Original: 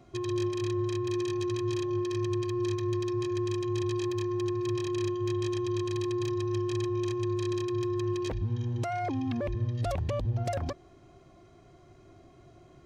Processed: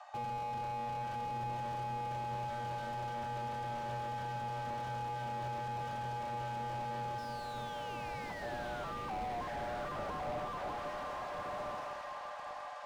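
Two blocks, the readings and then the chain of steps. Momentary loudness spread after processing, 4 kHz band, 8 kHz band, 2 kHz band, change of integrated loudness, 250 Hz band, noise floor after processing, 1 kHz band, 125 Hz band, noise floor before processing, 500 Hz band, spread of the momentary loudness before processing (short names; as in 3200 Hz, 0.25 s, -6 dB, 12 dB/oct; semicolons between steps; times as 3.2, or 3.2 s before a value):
3 LU, -7.5 dB, -11.5 dB, +0.5 dB, -8.5 dB, -18.5 dB, -44 dBFS, +4.5 dB, -13.0 dB, -56 dBFS, -12.0 dB, 1 LU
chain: HPF 180 Hz 12 dB/oct; bell 260 Hz +4 dB 0.3 oct; compressor 3:1, threshold -34 dBFS, peak gain reduction 5.5 dB; painted sound fall, 7.18–8.93, 810–4900 Hz -38 dBFS; one-sided clip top -40.5 dBFS; frequency shift +480 Hz; air absorption 52 m; on a send: diffused feedback echo 1.101 s, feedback 41%, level -3.5 dB; on the sum: slew limiter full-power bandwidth 6.3 Hz; gain +4.5 dB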